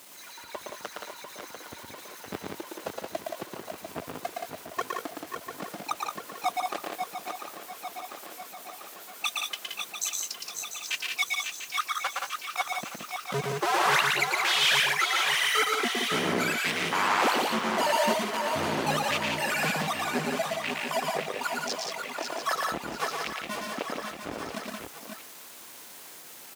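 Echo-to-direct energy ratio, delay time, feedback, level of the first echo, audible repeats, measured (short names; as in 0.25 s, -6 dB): 1.0 dB, 0.115 s, no steady repeat, -3.0 dB, 3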